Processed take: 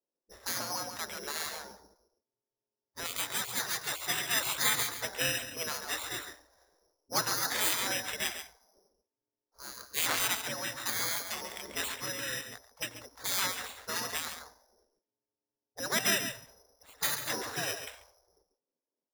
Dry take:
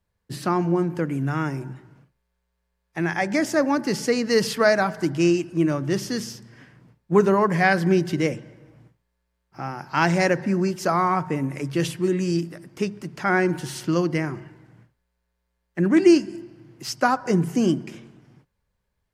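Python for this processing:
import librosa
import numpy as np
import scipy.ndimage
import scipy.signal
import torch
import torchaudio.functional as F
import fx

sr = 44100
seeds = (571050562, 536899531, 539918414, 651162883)

y = fx.freq_compress(x, sr, knee_hz=3300.0, ratio=4.0)
y = fx.low_shelf(y, sr, hz=380.0, db=-5.0, at=(3.03, 3.81))
y = y + 10.0 ** (-9.0 / 20.0) * np.pad(y, (int(139 * sr / 1000.0), 0))[:len(y)]
y = fx.env_lowpass(y, sr, base_hz=380.0, full_db=-17.0)
y = np.repeat(y[::8], 8)[:len(y)]
y = fx.spec_gate(y, sr, threshold_db=-20, keep='weak')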